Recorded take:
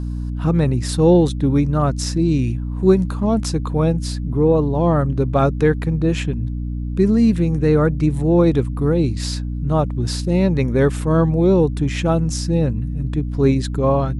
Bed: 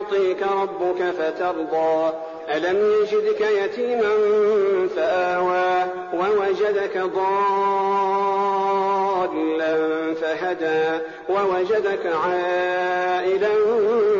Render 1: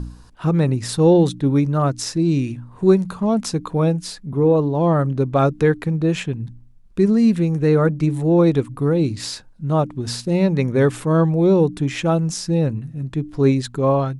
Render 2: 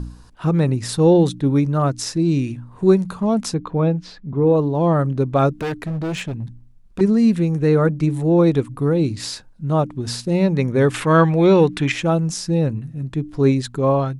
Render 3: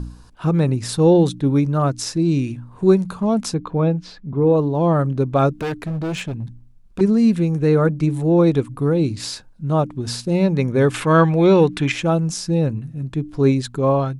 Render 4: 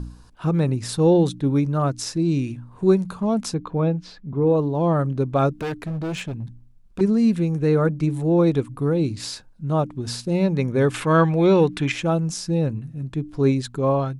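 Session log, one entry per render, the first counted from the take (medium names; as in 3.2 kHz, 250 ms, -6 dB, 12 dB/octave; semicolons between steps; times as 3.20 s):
de-hum 60 Hz, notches 5
3.54–4.47 s: distance through air 200 m; 5.53–7.01 s: overload inside the chain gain 21.5 dB; 10.94–11.92 s: peaking EQ 2.2 kHz +14 dB 2.4 oct
band-stop 1.9 kHz, Q 18
trim -3 dB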